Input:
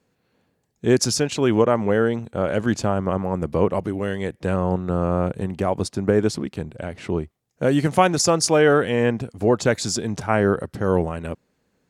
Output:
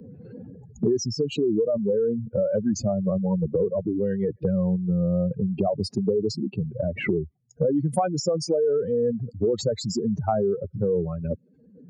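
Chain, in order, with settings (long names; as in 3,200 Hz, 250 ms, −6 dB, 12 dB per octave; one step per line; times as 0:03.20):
expanding power law on the bin magnitudes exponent 3.5
multiband upward and downward compressor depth 100%
level −3.5 dB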